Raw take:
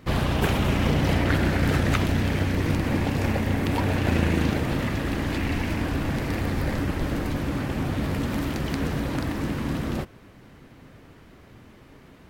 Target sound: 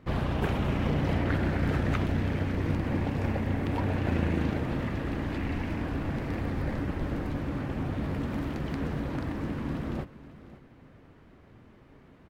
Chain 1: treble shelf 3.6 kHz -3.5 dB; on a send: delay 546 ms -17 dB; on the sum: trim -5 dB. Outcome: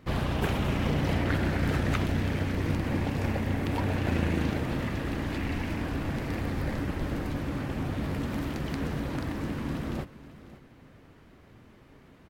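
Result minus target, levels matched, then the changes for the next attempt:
8 kHz band +7.5 dB
change: treble shelf 3.6 kHz -13 dB

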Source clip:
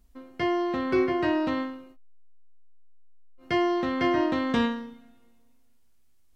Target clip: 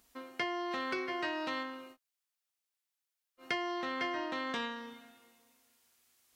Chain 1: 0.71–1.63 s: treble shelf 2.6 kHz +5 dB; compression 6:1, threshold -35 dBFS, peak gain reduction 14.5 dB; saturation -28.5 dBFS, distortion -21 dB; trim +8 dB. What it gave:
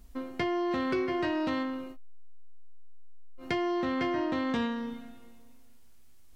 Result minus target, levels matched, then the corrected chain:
1 kHz band -2.5 dB
0.71–1.63 s: treble shelf 2.6 kHz +5 dB; compression 6:1, threshold -35 dBFS, peak gain reduction 14.5 dB; high-pass 1.1 kHz 6 dB/octave; saturation -28.5 dBFS, distortion -28 dB; trim +8 dB

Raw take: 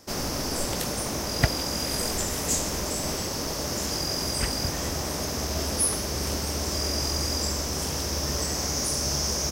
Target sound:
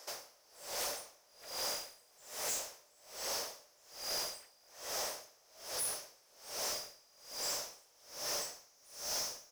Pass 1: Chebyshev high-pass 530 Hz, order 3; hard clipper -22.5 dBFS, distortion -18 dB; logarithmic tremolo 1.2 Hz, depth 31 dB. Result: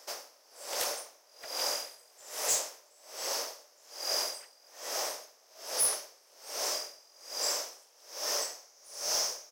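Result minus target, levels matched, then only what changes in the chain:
hard clipper: distortion -12 dB
change: hard clipper -34.5 dBFS, distortion -6 dB

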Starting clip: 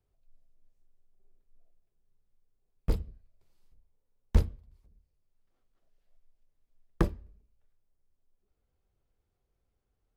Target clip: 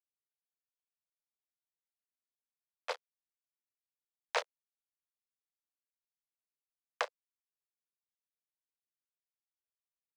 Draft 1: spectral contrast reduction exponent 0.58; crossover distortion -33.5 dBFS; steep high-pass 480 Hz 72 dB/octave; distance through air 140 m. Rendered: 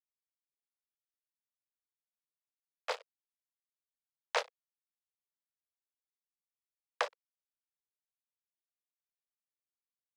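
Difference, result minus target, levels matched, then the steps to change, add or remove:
crossover distortion: distortion -5 dB
change: crossover distortion -26.5 dBFS

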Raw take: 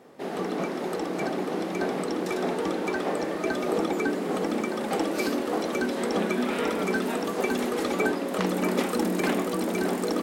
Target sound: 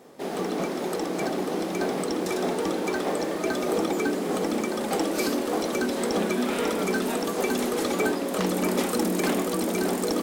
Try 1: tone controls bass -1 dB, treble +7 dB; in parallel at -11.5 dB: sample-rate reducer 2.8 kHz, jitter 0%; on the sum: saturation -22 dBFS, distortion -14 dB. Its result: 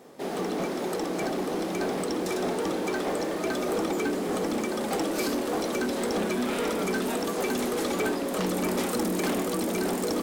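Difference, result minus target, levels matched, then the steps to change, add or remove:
saturation: distortion +11 dB
change: saturation -14 dBFS, distortion -24 dB

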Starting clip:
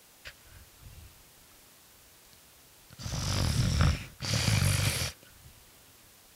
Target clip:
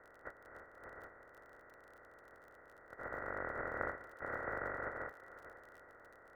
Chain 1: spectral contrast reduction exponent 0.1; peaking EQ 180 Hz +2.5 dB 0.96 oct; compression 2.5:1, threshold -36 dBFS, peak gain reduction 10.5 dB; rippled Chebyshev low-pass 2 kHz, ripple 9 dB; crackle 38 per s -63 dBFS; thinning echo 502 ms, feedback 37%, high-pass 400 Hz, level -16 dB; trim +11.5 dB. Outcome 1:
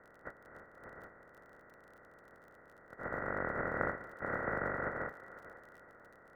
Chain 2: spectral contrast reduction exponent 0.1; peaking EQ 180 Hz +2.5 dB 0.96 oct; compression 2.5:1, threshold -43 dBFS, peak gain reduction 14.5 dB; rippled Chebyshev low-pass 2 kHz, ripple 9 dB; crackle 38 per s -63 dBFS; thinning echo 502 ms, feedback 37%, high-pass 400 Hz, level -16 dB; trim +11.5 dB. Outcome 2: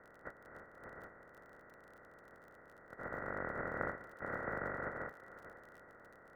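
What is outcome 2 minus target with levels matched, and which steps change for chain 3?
250 Hz band +3.5 dB
change: peaking EQ 180 Hz -7.5 dB 0.96 oct

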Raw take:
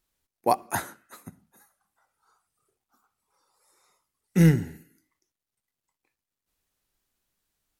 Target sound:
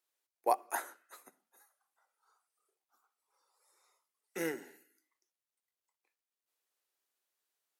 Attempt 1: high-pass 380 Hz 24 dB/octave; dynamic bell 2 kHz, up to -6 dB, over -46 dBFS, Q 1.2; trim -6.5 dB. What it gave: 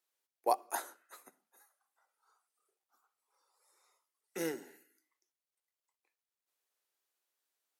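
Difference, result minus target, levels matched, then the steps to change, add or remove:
4 kHz band +3.5 dB
change: dynamic bell 4.2 kHz, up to -6 dB, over -46 dBFS, Q 1.2

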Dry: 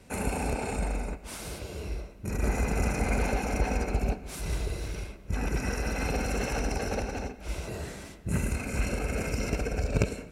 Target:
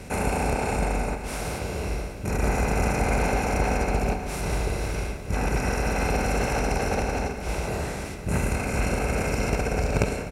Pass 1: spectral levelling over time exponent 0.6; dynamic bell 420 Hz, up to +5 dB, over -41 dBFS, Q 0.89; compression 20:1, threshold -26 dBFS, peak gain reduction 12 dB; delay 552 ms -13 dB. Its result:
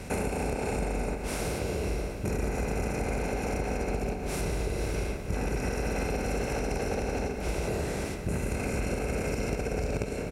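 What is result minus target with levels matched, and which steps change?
compression: peak gain reduction +12 dB; 1 kHz band -3.0 dB
change: dynamic bell 930 Hz, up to +5 dB, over -41 dBFS, Q 0.89; remove: compression 20:1, threshold -26 dBFS, peak gain reduction 12 dB

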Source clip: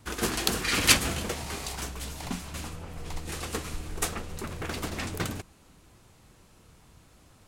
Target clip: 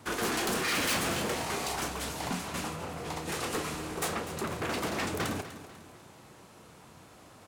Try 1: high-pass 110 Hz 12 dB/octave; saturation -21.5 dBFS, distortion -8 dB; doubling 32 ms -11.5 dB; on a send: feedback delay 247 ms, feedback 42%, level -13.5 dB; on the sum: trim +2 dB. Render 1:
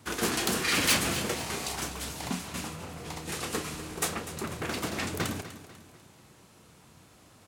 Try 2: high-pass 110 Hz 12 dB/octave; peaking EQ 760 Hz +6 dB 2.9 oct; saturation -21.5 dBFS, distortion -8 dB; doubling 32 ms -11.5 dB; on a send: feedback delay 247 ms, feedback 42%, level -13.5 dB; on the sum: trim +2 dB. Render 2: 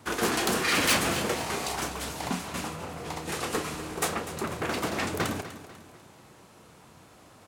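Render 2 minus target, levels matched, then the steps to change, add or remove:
saturation: distortion -4 dB
change: saturation -29.5 dBFS, distortion -4 dB

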